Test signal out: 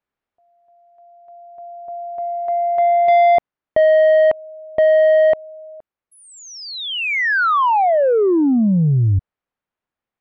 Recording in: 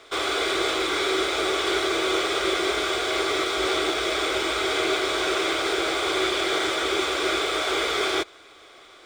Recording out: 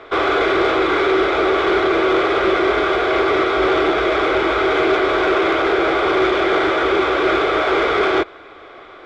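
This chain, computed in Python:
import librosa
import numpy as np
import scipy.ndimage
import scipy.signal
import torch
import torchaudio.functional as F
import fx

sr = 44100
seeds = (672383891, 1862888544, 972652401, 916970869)

p1 = scipy.signal.sosfilt(scipy.signal.butter(2, 1800.0, 'lowpass', fs=sr, output='sos'), x)
p2 = fx.rider(p1, sr, range_db=5, speed_s=2.0)
p3 = p1 + F.gain(torch.from_numpy(p2), -1.0).numpy()
p4 = 10.0 ** (-15.0 / 20.0) * np.tanh(p3 / 10.0 ** (-15.0 / 20.0))
y = F.gain(torch.from_numpy(p4), 6.0).numpy()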